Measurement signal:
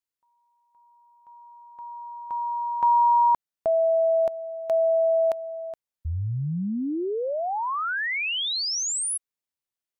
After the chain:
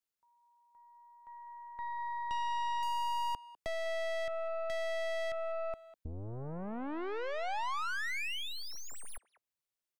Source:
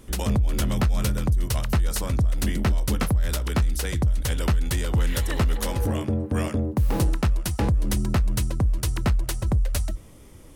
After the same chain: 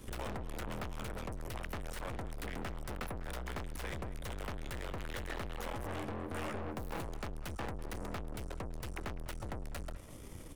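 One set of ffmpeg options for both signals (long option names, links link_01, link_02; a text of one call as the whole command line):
ffmpeg -i in.wav -filter_complex "[0:a]aeval=exprs='(tanh(63.1*val(0)+0.8)-tanh(0.8))/63.1':channel_layout=same,acrossover=split=380|830|2800[link_01][link_02][link_03][link_04];[link_01]acompressor=threshold=-44dB:ratio=4[link_05];[link_02]acompressor=threshold=-46dB:ratio=4[link_06];[link_03]acompressor=threshold=-40dB:ratio=4[link_07];[link_04]acompressor=threshold=-56dB:ratio=4[link_08];[link_05][link_06][link_07][link_08]amix=inputs=4:normalize=0,asplit=2[link_09][link_10];[link_10]adelay=200,highpass=300,lowpass=3400,asoftclip=type=hard:threshold=-39dB,volume=-15dB[link_11];[link_09][link_11]amix=inputs=2:normalize=0,volume=3dB" out.wav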